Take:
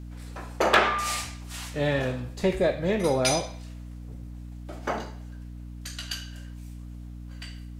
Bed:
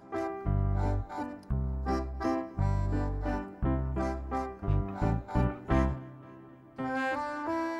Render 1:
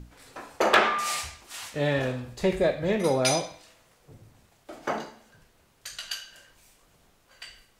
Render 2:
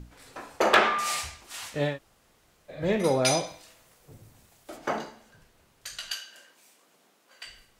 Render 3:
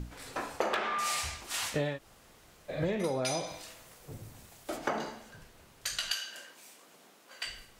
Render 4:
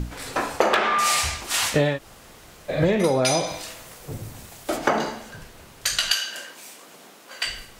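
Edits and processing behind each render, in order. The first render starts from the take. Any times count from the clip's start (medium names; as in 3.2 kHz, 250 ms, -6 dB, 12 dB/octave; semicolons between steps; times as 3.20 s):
hum notches 60/120/180/240/300 Hz
1.91–2.76 s: room tone, crossfade 0.16 s; 3.46–4.76 s: treble shelf 11 kHz -> 5.7 kHz +9.5 dB; 6.12–7.46 s: high-pass 210 Hz 24 dB/octave
in parallel at -2 dB: peak limiter -18.5 dBFS, peak gain reduction 11 dB; on the sum: compression 16:1, threshold -28 dBFS, peak gain reduction 17 dB
trim +11.5 dB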